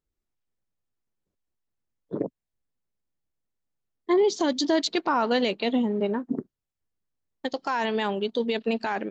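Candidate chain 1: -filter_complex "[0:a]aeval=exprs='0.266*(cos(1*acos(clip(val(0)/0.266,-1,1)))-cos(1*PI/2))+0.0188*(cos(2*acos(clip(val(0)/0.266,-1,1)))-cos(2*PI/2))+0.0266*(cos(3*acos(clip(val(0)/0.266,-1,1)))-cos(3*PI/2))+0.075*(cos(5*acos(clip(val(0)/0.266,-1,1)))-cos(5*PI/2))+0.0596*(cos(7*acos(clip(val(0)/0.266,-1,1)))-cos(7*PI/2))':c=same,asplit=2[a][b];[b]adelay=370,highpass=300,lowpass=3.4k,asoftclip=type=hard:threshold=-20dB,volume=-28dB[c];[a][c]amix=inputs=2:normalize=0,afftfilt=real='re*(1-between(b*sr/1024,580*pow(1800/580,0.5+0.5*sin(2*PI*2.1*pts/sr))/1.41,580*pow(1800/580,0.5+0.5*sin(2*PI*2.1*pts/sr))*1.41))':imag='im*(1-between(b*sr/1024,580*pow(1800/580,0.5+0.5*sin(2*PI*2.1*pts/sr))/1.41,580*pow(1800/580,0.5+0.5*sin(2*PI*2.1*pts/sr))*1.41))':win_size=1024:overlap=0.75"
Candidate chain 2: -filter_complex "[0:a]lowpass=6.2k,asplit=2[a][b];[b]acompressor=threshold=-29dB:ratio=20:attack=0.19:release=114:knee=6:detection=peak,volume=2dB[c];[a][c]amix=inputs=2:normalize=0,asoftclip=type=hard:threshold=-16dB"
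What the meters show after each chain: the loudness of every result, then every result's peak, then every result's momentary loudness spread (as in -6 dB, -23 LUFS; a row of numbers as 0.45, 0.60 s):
-26.5, -24.5 LUFS; -11.5, -16.0 dBFS; 13, 9 LU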